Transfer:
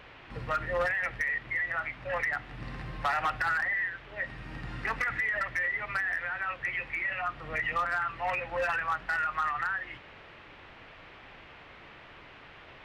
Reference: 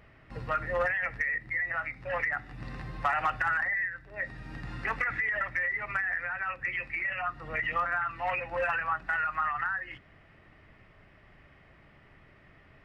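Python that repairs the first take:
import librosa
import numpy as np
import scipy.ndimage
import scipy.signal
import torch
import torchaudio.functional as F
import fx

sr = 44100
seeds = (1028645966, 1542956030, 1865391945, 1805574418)

y = fx.fix_declip(x, sr, threshold_db=-23.0)
y = fx.noise_reduce(y, sr, print_start_s=12.18, print_end_s=12.68, reduce_db=7.0)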